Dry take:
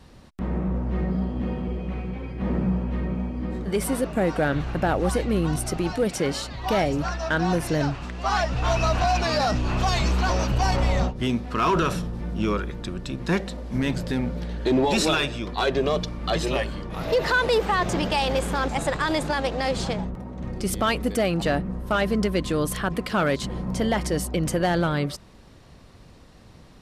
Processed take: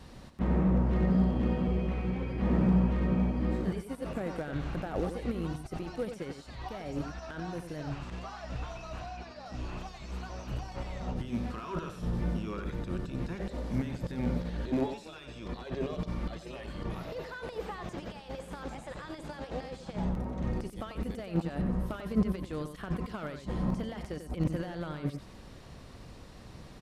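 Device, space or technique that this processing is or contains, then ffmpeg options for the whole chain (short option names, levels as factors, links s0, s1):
de-esser from a sidechain: -filter_complex "[0:a]asplit=2[s0][s1];[s1]highpass=4100,apad=whole_len=1182478[s2];[s0][s2]sidechaincompress=threshold=0.00158:ratio=10:attack=0.75:release=27,asettb=1/sr,asplit=3[s3][s4][s5];[s3]atrim=end=9.064[s6];[s4]atrim=start=9.06:end=9.46,asetpts=PTS-STARTPTS,afade=t=in:d=0.004:c=qsin,afade=t=out:st=0.396:d=0.004:c=qsin,highshelf=f=7900:g=-11.5[s7];[s5]atrim=start=9.456[s8];[s6][s7]acrossfade=d=0.004:c1=hsin:c2=qsin[s9];[s9][s8]acrossfade=d=0.004:c1=qsin:c2=hsin,aecho=1:1:92:0.376"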